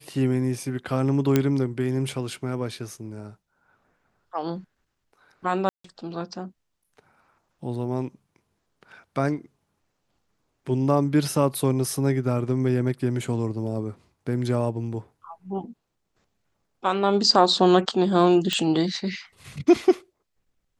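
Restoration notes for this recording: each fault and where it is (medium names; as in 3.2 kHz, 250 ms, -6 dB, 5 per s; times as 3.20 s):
1.36 s: pop -6 dBFS
5.69–5.84 s: dropout 154 ms
18.53 s: pop -10 dBFS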